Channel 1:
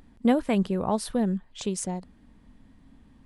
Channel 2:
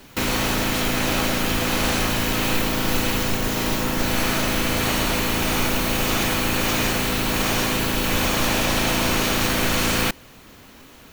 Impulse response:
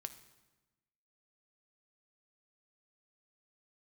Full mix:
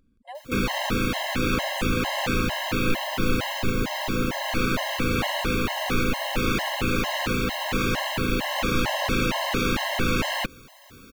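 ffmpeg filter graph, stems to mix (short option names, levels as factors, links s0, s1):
-filter_complex "[0:a]volume=0.316[s0];[1:a]acrossover=split=4100[s1][s2];[s2]acompressor=threshold=0.0158:ratio=4:attack=1:release=60[s3];[s1][s3]amix=inputs=2:normalize=0,adelay=350,volume=1.06[s4];[s0][s4]amix=inputs=2:normalize=0,afftfilt=real='re*gt(sin(2*PI*2.2*pts/sr)*(1-2*mod(floor(b*sr/1024/540),2)),0)':imag='im*gt(sin(2*PI*2.2*pts/sr)*(1-2*mod(floor(b*sr/1024/540),2)),0)':win_size=1024:overlap=0.75"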